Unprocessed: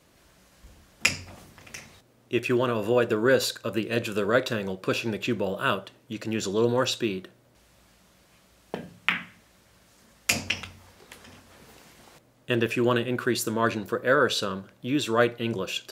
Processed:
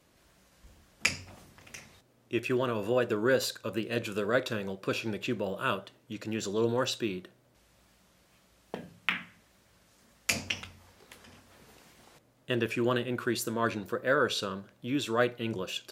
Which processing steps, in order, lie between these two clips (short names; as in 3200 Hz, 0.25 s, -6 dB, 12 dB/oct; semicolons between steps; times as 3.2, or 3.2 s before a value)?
wow and flutter 45 cents; gain -5 dB